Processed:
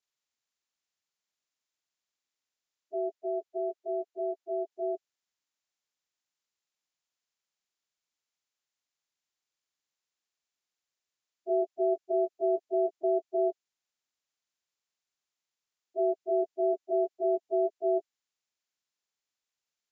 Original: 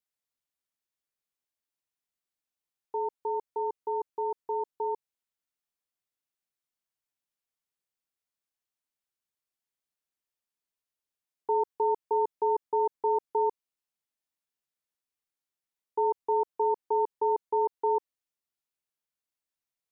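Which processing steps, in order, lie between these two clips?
partials spread apart or drawn together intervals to 76%
0:03.13–0:04.72: bass and treble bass −6 dB, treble −3 dB

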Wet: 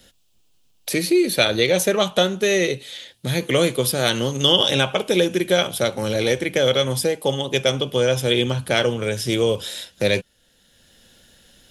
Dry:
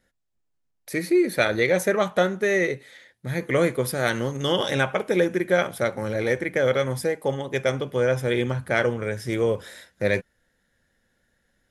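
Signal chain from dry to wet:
high shelf with overshoot 2,400 Hz +6.5 dB, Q 3
multiband upward and downward compressor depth 40%
level +3 dB

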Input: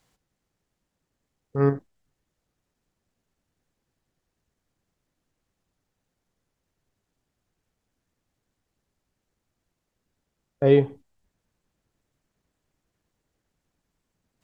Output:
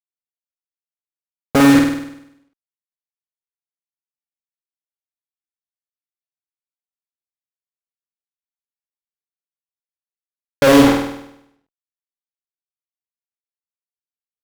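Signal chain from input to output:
comb filter 3.7 ms, depth 67%
downward compressor 8 to 1, threshold −30 dBFS, peak gain reduction 15.5 dB
fuzz pedal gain 56 dB, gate −48 dBFS
flutter between parallel walls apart 8.5 metres, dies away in 0.79 s
level +3 dB

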